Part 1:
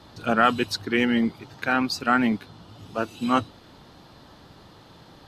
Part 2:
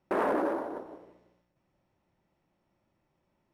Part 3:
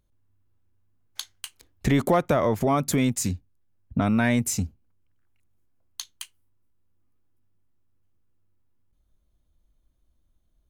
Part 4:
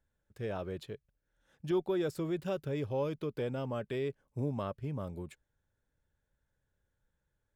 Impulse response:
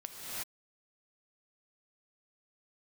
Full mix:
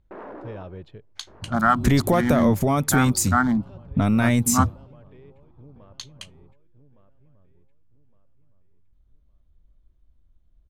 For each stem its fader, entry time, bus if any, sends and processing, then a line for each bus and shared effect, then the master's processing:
+2.5 dB, 1.25 s, no send, no echo send, local Wiener filter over 25 samples; expander -42 dBFS; static phaser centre 1.1 kHz, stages 4
0.61 s -12 dB -> 0.84 s -23 dB, 0.00 s, no send, echo send -13.5 dB, none
-0.5 dB, 0.00 s, no send, no echo send, treble shelf 6 kHz +9.5 dB
-2.0 dB, 0.05 s, no send, echo send -14.5 dB, auto duck -16 dB, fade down 0.20 s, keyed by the third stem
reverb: none
echo: feedback delay 1163 ms, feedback 31%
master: level-controlled noise filter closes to 2.8 kHz, open at -20.5 dBFS; bass shelf 130 Hz +10.5 dB

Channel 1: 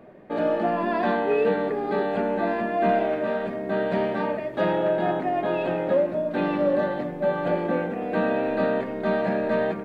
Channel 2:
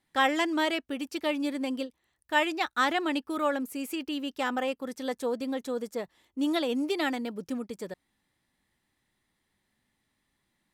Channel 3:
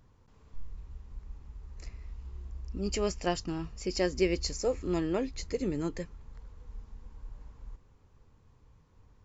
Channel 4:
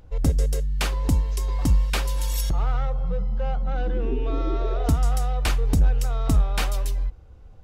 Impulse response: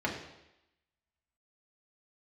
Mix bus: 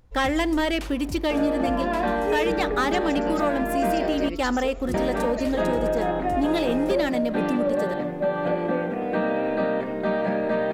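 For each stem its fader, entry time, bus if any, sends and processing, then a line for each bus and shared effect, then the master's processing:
+2.0 dB, 1.00 s, muted 4.29–4.94 s, no send, none
-1.0 dB, 0.00 s, send -23.5 dB, bass shelf 190 Hz +11.5 dB; waveshaping leveller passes 2
-2.5 dB, 0.00 s, no send, none
-10.0 dB, 0.00 s, no send, level rider gain up to 8 dB; auto duck -11 dB, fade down 1.15 s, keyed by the second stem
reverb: on, RT60 0.90 s, pre-delay 3 ms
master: compression 2.5:1, threshold -21 dBFS, peak gain reduction 6 dB

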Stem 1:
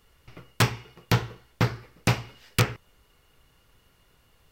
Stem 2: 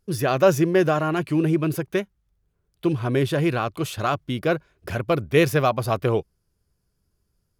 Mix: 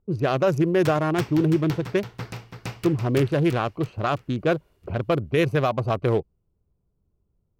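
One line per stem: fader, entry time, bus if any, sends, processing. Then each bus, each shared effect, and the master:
-2.5 dB, 0.25 s, no send, echo send -8.5 dB, auto duck -12 dB, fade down 1.05 s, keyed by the second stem
+1.0 dB, 0.00 s, no send, no echo send, local Wiener filter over 25 samples; level-controlled noise filter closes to 2.1 kHz, open at -17.5 dBFS; peak limiter -13 dBFS, peak gain reduction 7 dB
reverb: none
echo: feedback delay 333 ms, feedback 43%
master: none

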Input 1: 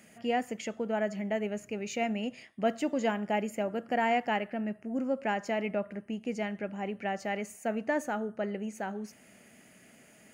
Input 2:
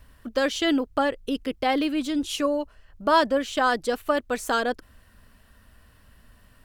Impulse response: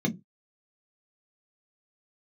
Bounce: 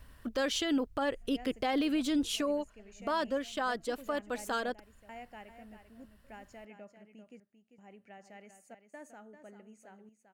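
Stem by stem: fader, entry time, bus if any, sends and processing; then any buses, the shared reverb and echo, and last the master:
-19.5 dB, 1.05 s, no send, echo send -10 dB, peaking EQ 8.5 kHz +7.5 dB 0.87 oct; trance gate "xxxxx..xxxxx.x" 78 bpm -60 dB
2.17 s -2 dB -> 2.78 s -9.5 dB, 0.00 s, no send, no echo send, none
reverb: none
echo: delay 394 ms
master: peak limiter -23 dBFS, peak gain reduction 9.5 dB

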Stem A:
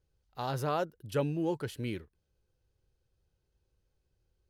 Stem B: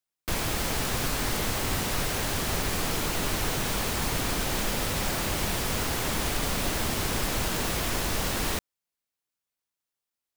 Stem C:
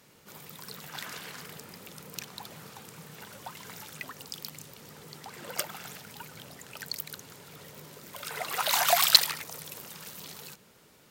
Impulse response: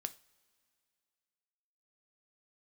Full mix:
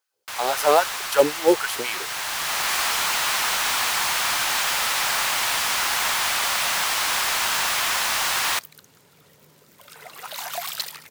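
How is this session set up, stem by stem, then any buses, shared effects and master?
+2.5 dB, 0.00 s, no send, treble shelf 5.9 kHz +9.5 dB; LFO high-pass sine 3.8 Hz 400–1500 Hz
-1.0 dB, 0.00 s, send -11.5 dB, high-pass 840 Hz 24 dB/octave; slew-rate limiter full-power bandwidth 160 Hz; auto duck -10 dB, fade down 1.20 s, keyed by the first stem
-16.0 dB, 1.65 s, no send, saturation -11.5 dBFS, distortion -10 dB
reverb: on, pre-delay 3 ms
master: level rider gain up to 9.5 dB; short-mantissa float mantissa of 2-bit

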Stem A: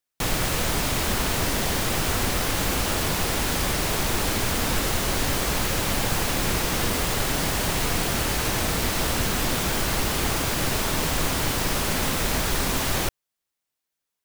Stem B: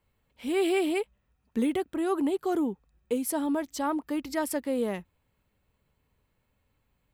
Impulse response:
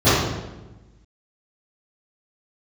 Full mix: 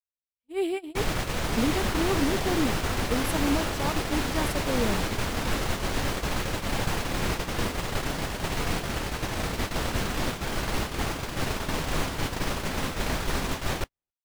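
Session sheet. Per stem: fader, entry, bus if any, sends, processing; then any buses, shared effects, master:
-1.5 dB, 0.75 s, no send, echo send -22 dB, low-pass 3.8 kHz 6 dB/octave
+1.0 dB, 0.00 s, no send, echo send -22 dB, bass shelf 180 Hz +11.5 dB; flange 0.47 Hz, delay 0.1 ms, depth 5 ms, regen -68%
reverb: none
echo: delay 267 ms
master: gate -26 dBFS, range -49 dB

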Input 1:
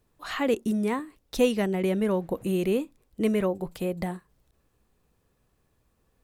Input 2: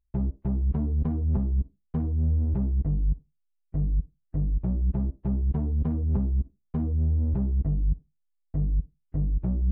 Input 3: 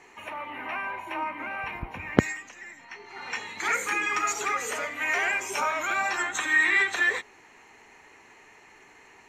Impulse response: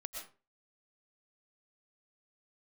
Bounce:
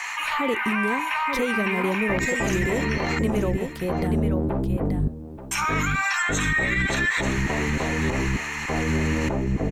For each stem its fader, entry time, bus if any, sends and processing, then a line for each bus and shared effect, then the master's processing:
+1.0 dB, 0.00 s, no send, echo send -7.5 dB, none
+1.0 dB, 1.95 s, no send, echo send -14 dB, spectral peaks clipped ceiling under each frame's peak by 25 dB
-1.5 dB, 0.00 s, muted 3.19–5.51 s, no send, echo send -13.5 dB, high-pass 1 kHz 24 dB/octave; level flattener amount 70%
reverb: none
echo: delay 881 ms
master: peak limiter -14.5 dBFS, peak gain reduction 9 dB

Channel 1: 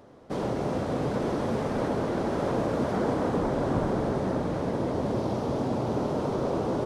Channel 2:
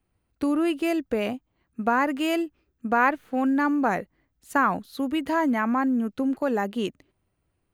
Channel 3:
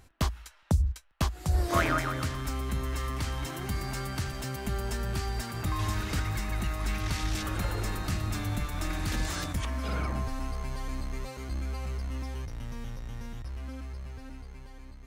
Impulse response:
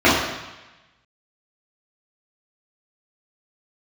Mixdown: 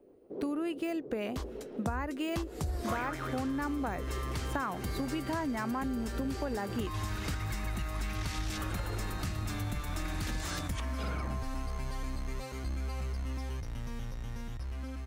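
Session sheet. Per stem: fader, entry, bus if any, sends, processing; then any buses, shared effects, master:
+1.0 dB, 0.00 s, no send, rotary cabinet horn 6.7 Hz; band-pass filter 380 Hz, Q 3; auto duck -8 dB, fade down 0.95 s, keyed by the second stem
-2.5 dB, 0.00 s, no send, de-esser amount 80%
-9.5 dB, 1.15 s, no send, level rider gain up to 9 dB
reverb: none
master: compression 6:1, threshold -31 dBFS, peak gain reduction 13.5 dB

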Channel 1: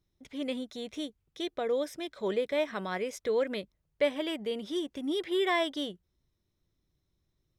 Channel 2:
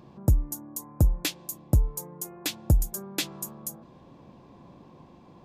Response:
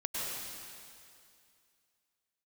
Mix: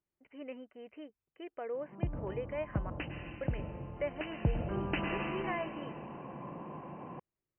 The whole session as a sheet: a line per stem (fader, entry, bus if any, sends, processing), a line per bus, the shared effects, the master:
-17.0 dB, 0.00 s, muted 2.90–3.41 s, no send, none
4.14 s -17 dB -> 4.87 s -5.5 dB, 1.75 s, send -4.5 dB, peaking EQ 150 Hz +6 dB 0.72 oct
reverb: on, RT60 2.4 s, pre-delay 93 ms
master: overdrive pedal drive 19 dB, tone 1.4 kHz, clips at -16.5 dBFS; brick-wall FIR low-pass 3.1 kHz

